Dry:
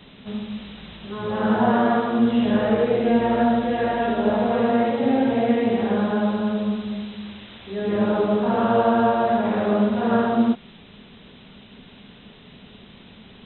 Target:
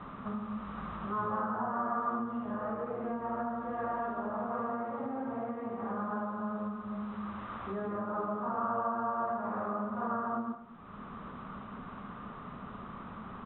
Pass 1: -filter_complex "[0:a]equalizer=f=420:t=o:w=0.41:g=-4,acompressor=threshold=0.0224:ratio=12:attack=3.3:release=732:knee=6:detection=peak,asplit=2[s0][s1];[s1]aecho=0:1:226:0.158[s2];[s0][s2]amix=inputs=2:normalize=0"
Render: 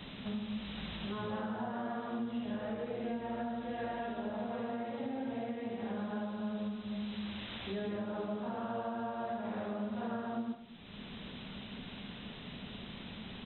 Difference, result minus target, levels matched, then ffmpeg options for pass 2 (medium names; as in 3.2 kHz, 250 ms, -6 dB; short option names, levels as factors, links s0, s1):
1 kHz band -5.0 dB
-filter_complex "[0:a]equalizer=f=420:t=o:w=0.41:g=-4,acompressor=threshold=0.0224:ratio=12:attack=3.3:release=732:knee=6:detection=peak,lowpass=f=1200:t=q:w=7.7,asplit=2[s0][s1];[s1]aecho=0:1:226:0.158[s2];[s0][s2]amix=inputs=2:normalize=0"